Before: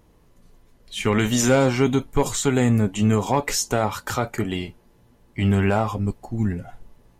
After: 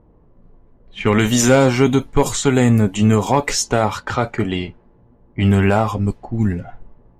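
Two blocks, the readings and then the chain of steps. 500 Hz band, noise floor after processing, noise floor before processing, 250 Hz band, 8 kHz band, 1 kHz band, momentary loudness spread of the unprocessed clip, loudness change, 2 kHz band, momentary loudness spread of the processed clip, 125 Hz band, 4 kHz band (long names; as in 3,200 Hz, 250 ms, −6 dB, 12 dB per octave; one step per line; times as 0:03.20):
+5.0 dB, −52 dBFS, −57 dBFS, +5.0 dB, +4.0 dB, +5.0 dB, 10 LU, +5.0 dB, +5.0 dB, 10 LU, +5.0 dB, +4.0 dB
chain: low-pass that shuts in the quiet parts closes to 890 Hz, open at −17.5 dBFS
level +5 dB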